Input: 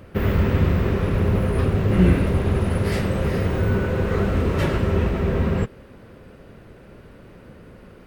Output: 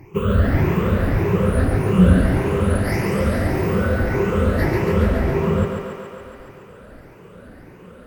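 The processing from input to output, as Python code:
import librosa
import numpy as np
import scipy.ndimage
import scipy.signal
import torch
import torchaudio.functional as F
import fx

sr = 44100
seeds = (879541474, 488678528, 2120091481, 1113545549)

p1 = fx.spec_ripple(x, sr, per_octave=0.74, drift_hz=1.7, depth_db=23)
p2 = fx.peak_eq(p1, sr, hz=3800.0, db=-6.0, octaves=1.2)
p3 = p2 + fx.echo_thinned(p2, sr, ms=140, feedback_pct=75, hz=220.0, wet_db=-4.0, dry=0)
y = F.gain(torch.from_numpy(p3), -3.5).numpy()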